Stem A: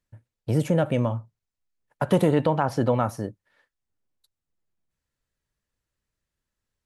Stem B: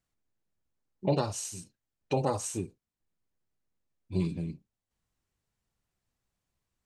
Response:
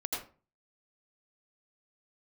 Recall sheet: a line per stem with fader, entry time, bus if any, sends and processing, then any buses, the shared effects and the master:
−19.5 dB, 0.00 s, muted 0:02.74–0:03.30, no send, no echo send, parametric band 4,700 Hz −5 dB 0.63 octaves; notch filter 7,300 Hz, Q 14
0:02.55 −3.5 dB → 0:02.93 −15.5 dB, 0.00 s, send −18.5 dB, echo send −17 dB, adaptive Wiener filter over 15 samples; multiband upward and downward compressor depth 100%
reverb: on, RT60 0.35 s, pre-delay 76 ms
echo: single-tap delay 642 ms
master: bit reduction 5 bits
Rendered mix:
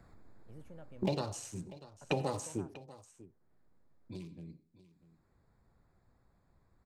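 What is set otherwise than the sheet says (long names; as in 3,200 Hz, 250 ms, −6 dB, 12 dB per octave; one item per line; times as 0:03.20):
stem A −19.5 dB → −31.0 dB
master: missing bit reduction 5 bits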